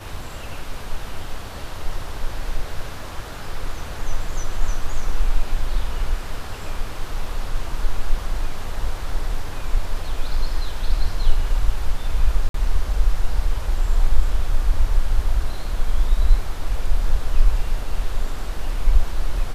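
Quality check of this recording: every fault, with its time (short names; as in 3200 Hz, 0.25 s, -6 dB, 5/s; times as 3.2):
12.49–12.54 gap 53 ms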